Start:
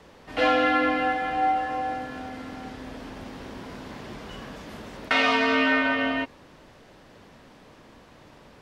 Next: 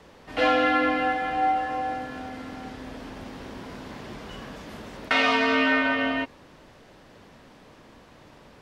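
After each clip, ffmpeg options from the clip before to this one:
-af anull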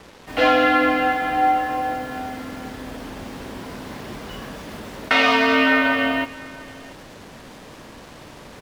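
-af "areverse,acompressor=mode=upward:threshold=0.01:ratio=2.5,areverse,acrusher=bits=7:mix=0:aa=0.5,aecho=1:1:685:0.0841,volume=1.78"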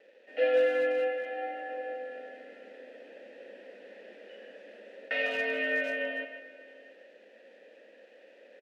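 -filter_complex "[0:a]asplit=3[s0][s1][s2];[s0]bandpass=f=530:t=q:w=8,volume=1[s3];[s1]bandpass=f=1840:t=q:w=8,volume=0.501[s4];[s2]bandpass=f=2480:t=q:w=8,volume=0.355[s5];[s3][s4][s5]amix=inputs=3:normalize=0,afftfilt=real='re*between(b*sr/4096,190,12000)':imag='im*between(b*sr/4096,190,12000)':win_size=4096:overlap=0.75,asplit=2[s6][s7];[s7]adelay=150,highpass=300,lowpass=3400,asoftclip=type=hard:threshold=0.075,volume=0.447[s8];[s6][s8]amix=inputs=2:normalize=0,volume=0.668"

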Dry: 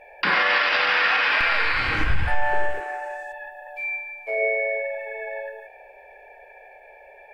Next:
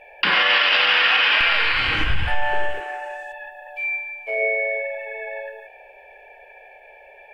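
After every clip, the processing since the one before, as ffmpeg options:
-af "equalizer=f=3000:t=o:w=0.46:g=11"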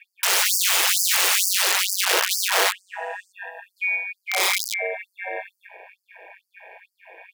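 -af "aeval=exprs='val(0)*sin(2*PI*94*n/s)':c=same,aeval=exprs='(mod(7.5*val(0)+1,2)-1)/7.5':c=same,afftfilt=real='re*gte(b*sr/1024,310*pow(4600/310,0.5+0.5*sin(2*PI*2.2*pts/sr)))':imag='im*gte(b*sr/1024,310*pow(4600/310,0.5+0.5*sin(2*PI*2.2*pts/sr)))':win_size=1024:overlap=0.75,volume=1.68"

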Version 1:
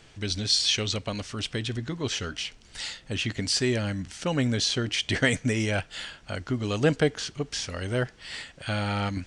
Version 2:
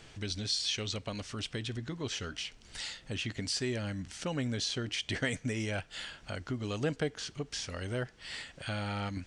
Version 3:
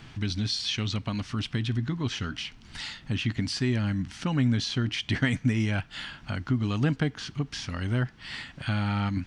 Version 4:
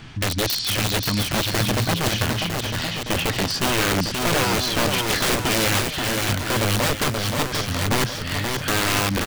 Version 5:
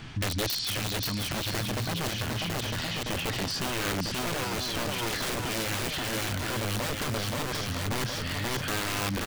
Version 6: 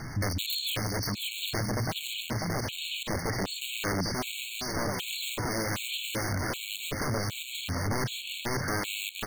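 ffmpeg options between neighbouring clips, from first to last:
-af "acompressor=threshold=0.00501:ratio=1.5"
-af "equalizer=f=125:t=o:w=1:g=6,equalizer=f=250:t=o:w=1:g=6,equalizer=f=500:t=o:w=1:g=-10,equalizer=f=1000:t=o:w=1:g=4,equalizer=f=8000:t=o:w=1:g=-10,volume=1.78"
-filter_complex "[0:a]aeval=exprs='(mod(14.1*val(0)+1,2)-1)/14.1':c=same,asplit=2[s0][s1];[s1]aecho=0:1:530|954|1293|1565|1782:0.631|0.398|0.251|0.158|0.1[s2];[s0][s2]amix=inputs=2:normalize=0,volume=2.11"
-af "alimiter=limit=0.0841:level=0:latency=1:release=29,volume=0.794"
-af "aeval=exprs='val(0)+0.5*0.0119*sgn(val(0))':c=same,afftfilt=real='re*gt(sin(2*PI*1.3*pts/sr)*(1-2*mod(floor(b*sr/1024/2200),2)),0)':imag='im*gt(sin(2*PI*1.3*pts/sr)*(1-2*mod(floor(b*sr/1024/2200),2)),0)':win_size=1024:overlap=0.75"

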